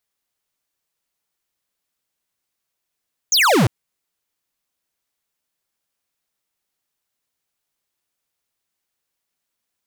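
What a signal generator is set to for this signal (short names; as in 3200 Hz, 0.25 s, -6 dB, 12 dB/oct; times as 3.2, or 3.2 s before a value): laser zap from 7000 Hz, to 96 Hz, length 0.35 s square, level -14 dB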